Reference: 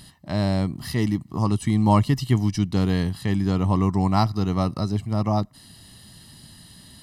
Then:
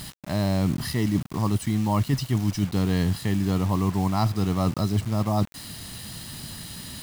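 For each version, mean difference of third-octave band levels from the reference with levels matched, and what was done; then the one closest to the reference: 7.0 dB: reverse; compression 8:1, threshold -28 dBFS, peak gain reduction 15 dB; reverse; word length cut 8-bit, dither none; trim +8 dB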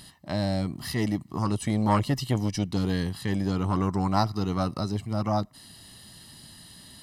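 3.0 dB: tone controls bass -5 dB, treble 0 dB; transformer saturation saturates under 490 Hz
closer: second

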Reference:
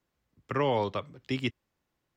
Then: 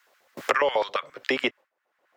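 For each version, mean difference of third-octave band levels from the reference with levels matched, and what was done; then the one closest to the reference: 9.0 dB: gate with hold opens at -59 dBFS; in parallel at -1 dB: compression, threshold -37 dBFS, peak gain reduction 13.5 dB; on the sum: LFO high-pass square 7.3 Hz 570–1500 Hz; three bands compressed up and down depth 100%; trim +3 dB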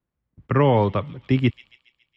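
4.0 dB: tone controls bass +8 dB, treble -12 dB; gate -59 dBFS, range -14 dB; treble shelf 3.8 kHz -6 dB; on a send: feedback echo behind a high-pass 139 ms, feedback 55%, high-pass 2.8 kHz, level -13 dB; on the sum: trim +8 dB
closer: second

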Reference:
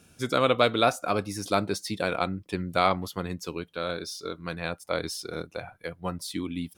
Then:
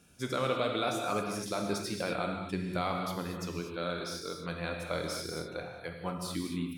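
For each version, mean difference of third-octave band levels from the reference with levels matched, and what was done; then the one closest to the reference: 8.5 dB: peak limiter -15.5 dBFS, peak gain reduction 8 dB; gated-style reverb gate 270 ms flat, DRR 1.5 dB; trim -5.5 dB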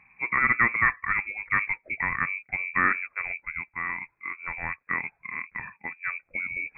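15.0 dB: reverse; upward compressor, threshold -34 dBFS; reverse; frequency inversion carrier 2.5 kHz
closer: first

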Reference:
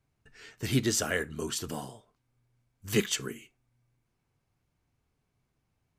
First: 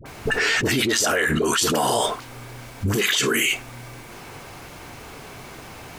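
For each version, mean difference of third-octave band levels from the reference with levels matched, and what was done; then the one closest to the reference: 10.5 dB: tone controls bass -13 dB, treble -3 dB; phase dispersion highs, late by 58 ms, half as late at 780 Hz; level flattener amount 100%; trim +4 dB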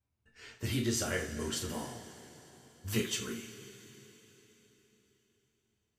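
6.0 dB: gate -55 dBFS, range -9 dB; compression 1.5:1, threshold -36 dBFS, peak gain reduction 6 dB; two-slope reverb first 0.31 s, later 4.1 s, from -18 dB, DRR -1.5 dB; trim -4 dB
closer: second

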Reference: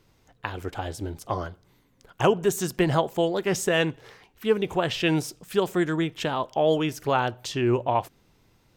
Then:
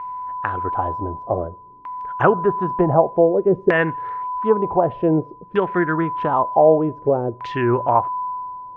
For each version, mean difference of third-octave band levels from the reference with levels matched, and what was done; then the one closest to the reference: 9.0 dB: low-pass that closes with the level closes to 1.8 kHz, closed at -19 dBFS; whistle 1 kHz -33 dBFS; LFO low-pass saw down 0.54 Hz 380–2100 Hz; trim +3.5 dB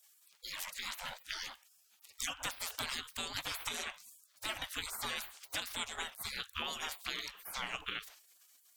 17.0 dB: hum notches 60/120/180/240/300/360 Hz; spectral gate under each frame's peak -30 dB weak; compression 6:1, threshold -50 dBFS, peak gain reduction 12 dB; trim +14 dB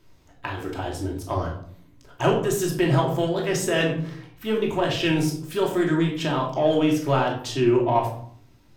5.5 dB: in parallel at -6 dB: saturation -23 dBFS, distortion -9 dB; on the sum: simulated room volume 830 m³, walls furnished, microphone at 2.8 m; flange 0.8 Hz, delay 8.7 ms, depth 9.3 ms, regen +73%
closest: third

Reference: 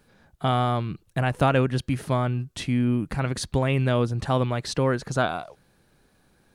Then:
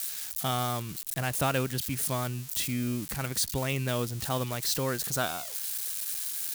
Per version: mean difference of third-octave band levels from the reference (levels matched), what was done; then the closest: 9.5 dB: zero-crossing glitches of -24.5 dBFS; treble shelf 2.2 kHz +9.5 dB; trim -8.5 dB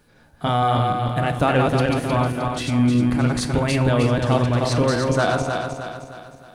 7.0 dB: backward echo that repeats 155 ms, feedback 66%, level -2.5 dB; in parallel at -10 dB: saturation -18.5 dBFS, distortion -12 dB; on the sum: FDN reverb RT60 0.46 s, high-frequency decay 0.95×, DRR 8.5 dB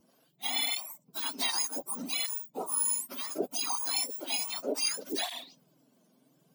17.0 dB: spectrum inverted on a logarithmic axis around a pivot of 1.6 kHz; peaking EQ 1.7 kHz -13 dB 0.49 oct; cancelling through-zero flanger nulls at 0.66 Hz, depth 7.5 ms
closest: second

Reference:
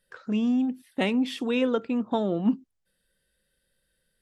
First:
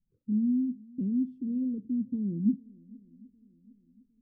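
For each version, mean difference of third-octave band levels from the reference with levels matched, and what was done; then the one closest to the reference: 10.0 dB: inverse Chebyshev low-pass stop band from 650 Hz, stop band 50 dB; shuffle delay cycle 757 ms, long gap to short 1.5:1, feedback 41%, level -24 dB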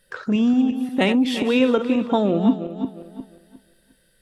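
3.5 dB: backward echo that repeats 178 ms, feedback 49%, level -9 dB; in parallel at +2 dB: compression, threshold -37 dBFS, peak gain reduction 18 dB; on the sum: trim +4.5 dB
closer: second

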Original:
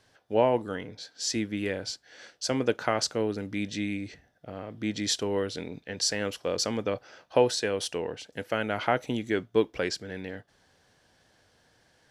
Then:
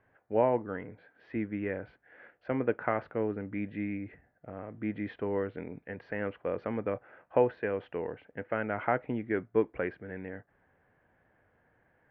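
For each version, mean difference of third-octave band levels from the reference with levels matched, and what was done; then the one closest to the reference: 5.0 dB: steep low-pass 2.2 kHz 36 dB/octave; trim -3 dB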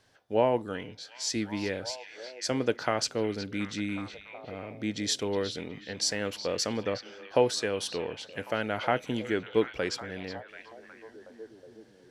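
2.5 dB: repeats whose band climbs or falls 367 ms, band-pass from 3.2 kHz, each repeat -0.7 oct, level -7 dB; trim -1.5 dB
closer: second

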